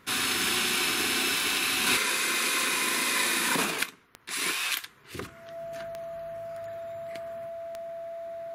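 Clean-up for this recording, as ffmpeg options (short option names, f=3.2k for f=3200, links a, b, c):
-af "adeclick=t=4,bandreject=f=670:w=30"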